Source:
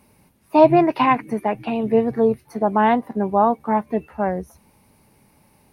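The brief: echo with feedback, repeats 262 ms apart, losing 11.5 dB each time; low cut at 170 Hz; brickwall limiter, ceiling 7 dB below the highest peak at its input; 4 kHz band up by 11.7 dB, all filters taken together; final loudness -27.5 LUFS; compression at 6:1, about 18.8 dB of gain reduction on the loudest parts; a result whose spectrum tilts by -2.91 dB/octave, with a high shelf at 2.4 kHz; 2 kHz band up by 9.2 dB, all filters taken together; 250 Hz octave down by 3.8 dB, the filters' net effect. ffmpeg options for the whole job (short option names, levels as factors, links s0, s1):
-af "highpass=170,equalizer=f=250:t=o:g=-4,equalizer=f=2000:t=o:g=5.5,highshelf=f=2400:g=8.5,equalizer=f=4000:t=o:g=6.5,acompressor=threshold=0.0398:ratio=6,alimiter=limit=0.0841:level=0:latency=1,aecho=1:1:262|524|786:0.266|0.0718|0.0194,volume=2.11"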